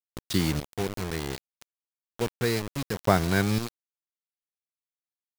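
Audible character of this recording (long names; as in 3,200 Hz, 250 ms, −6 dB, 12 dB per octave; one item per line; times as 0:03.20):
chopped level 0.67 Hz, depth 65%, duty 40%
a quantiser's noise floor 6 bits, dither none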